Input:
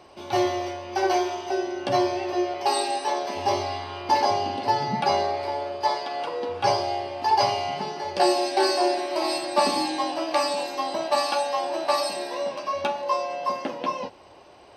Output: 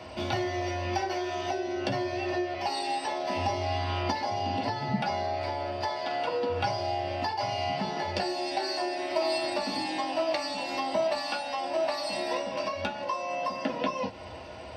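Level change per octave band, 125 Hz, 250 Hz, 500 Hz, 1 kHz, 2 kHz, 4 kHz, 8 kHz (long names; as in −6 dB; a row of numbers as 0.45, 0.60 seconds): +3.5, −4.0, −5.0, −6.5, −2.0, −4.5, −8.0 decibels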